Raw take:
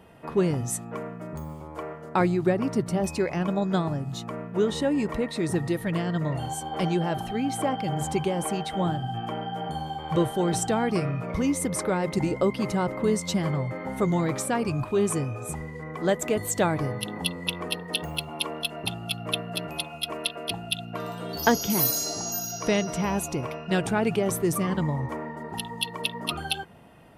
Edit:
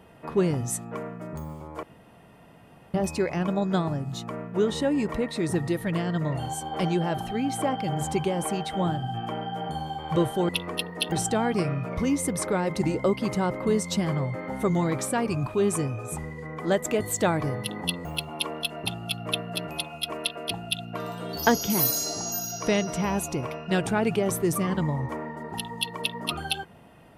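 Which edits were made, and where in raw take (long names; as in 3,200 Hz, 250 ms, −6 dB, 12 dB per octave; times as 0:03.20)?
0:01.83–0:02.94: fill with room tone
0:17.42–0:18.05: move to 0:10.49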